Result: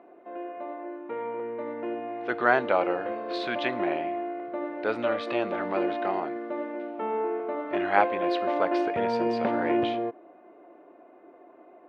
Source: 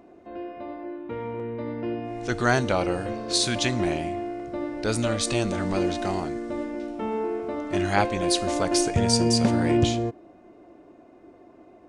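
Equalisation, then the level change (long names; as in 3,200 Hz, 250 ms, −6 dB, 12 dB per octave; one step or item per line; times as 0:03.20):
band-pass filter 480–4,100 Hz
high-frequency loss of the air 490 metres
+4.5 dB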